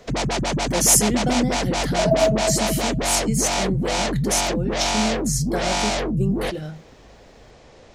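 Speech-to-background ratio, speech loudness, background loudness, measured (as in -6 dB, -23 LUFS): 0.0 dB, -23.0 LUFS, -23.0 LUFS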